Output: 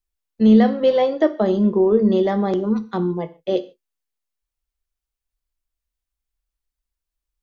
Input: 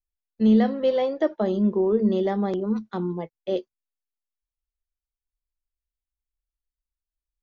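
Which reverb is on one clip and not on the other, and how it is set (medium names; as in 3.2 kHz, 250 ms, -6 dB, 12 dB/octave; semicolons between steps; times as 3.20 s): gated-style reverb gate 170 ms falling, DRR 11.5 dB; trim +5.5 dB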